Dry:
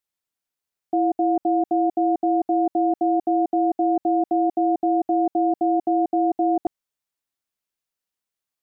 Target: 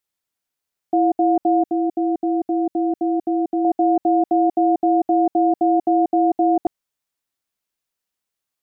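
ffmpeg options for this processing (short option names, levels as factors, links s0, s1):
-filter_complex "[0:a]asettb=1/sr,asplit=3[s0][s1][s2];[s0]atrim=end=1.634[s3];[s1]atrim=start=1.63:end=3.65,asetpts=PTS-STARTPTS,afade=t=in:d=0.004:c=qsin,afade=t=out:st=2.016:d=0.004:c=qsin,equalizer=f=800:w=1.1:g=-8.5[s4];[s2]atrim=start=3.646[s5];[s3][s4]acrossfade=d=0.004:c1=hsin:c2=qsin[s6];[s6][s5]acrossfade=d=0.004:c1=qsin:c2=hsin,volume=1.5"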